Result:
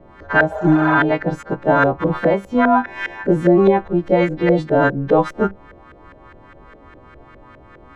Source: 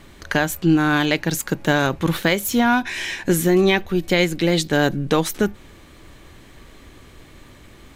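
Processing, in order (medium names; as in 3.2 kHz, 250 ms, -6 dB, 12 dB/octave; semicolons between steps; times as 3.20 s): partials quantised in pitch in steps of 2 st; LFO low-pass saw up 4.9 Hz 510–1600 Hz; spectral replace 0.53–0.92 s, 410–7900 Hz both; trim +2 dB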